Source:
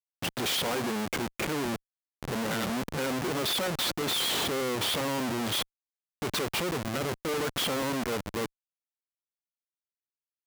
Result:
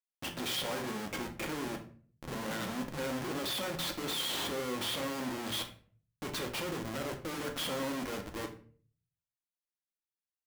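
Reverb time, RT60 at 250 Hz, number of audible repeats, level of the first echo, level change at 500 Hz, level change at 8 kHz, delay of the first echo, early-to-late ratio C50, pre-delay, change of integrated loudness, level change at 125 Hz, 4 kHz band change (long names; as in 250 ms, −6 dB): 0.45 s, 0.65 s, no echo audible, no echo audible, −6.5 dB, −6.5 dB, no echo audible, 10.0 dB, 3 ms, −6.5 dB, −7.0 dB, −6.0 dB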